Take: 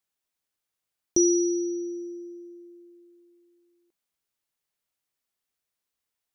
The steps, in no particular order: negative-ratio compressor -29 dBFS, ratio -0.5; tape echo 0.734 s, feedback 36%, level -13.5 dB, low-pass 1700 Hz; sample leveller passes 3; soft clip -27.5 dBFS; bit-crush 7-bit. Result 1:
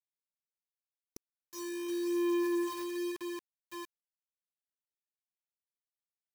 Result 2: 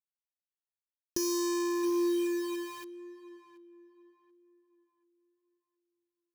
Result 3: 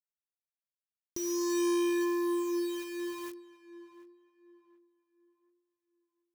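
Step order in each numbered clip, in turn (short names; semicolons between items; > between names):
sample leveller > tape echo > negative-ratio compressor > bit-crush > soft clip; sample leveller > soft clip > negative-ratio compressor > bit-crush > tape echo; negative-ratio compressor > sample leveller > soft clip > bit-crush > tape echo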